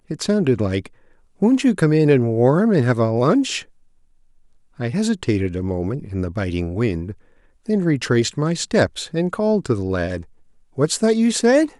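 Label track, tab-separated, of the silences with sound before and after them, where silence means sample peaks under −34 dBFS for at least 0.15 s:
0.870000	1.420000	silence
3.620000	4.790000	silence
7.130000	7.680000	silence
10.230000	10.780000	silence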